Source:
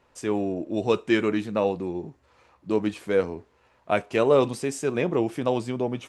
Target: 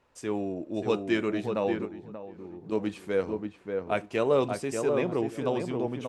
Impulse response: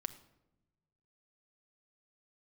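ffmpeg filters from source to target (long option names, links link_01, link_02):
-filter_complex "[0:a]asplit=2[link_01][link_02];[link_02]adelay=585,lowpass=frequency=1500:poles=1,volume=-4dB,asplit=2[link_03][link_04];[link_04]adelay=585,lowpass=frequency=1500:poles=1,volume=0.23,asplit=2[link_05][link_06];[link_06]adelay=585,lowpass=frequency=1500:poles=1,volume=0.23[link_07];[link_03][link_05][link_07]amix=inputs=3:normalize=0[link_08];[link_01][link_08]amix=inputs=2:normalize=0,asettb=1/sr,asplit=3[link_09][link_10][link_11];[link_09]atrim=end=1.854[link_12];[link_10]atrim=start=1.85:end=2.72,asetpts=PTS-STARTPTS,afade=type=in:duration=0.004:curve=qsin,afade=type=out:start_time=0.866:duration=0.004:curve=qsin,acompressor=threshold=-33dB:ratio=6[link_13];[link_11]atrim=start=2.716[link_14];[link_12][link_13]acrossfade=duration=0.004:curve1=hsin:curve2=qsin[link_15];[link_15][link_14]acrossfade=duration=0.004:curve1=qsin:curve2=hsin,volume=-5dB"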